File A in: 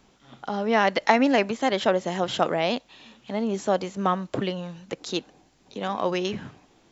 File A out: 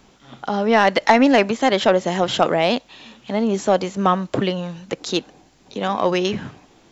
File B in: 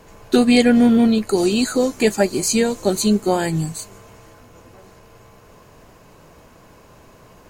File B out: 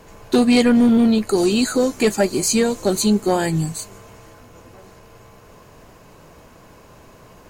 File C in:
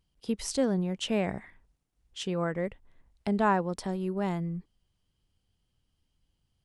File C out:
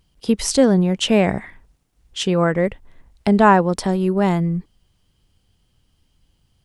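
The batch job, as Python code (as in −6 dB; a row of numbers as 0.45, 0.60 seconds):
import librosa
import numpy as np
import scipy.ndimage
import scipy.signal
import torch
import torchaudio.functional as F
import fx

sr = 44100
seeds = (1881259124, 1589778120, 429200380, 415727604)

y = 10.0 ** (-8.5 / 20.0) * np.tanh(x / 10.0 ** (-8.5 / 20.0))
y = y * 10.0 ** (-20 / 20.0) / np.sqrt(np.mean(np.square(y)))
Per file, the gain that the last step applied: +7.0, +1.5, +13.0 decibels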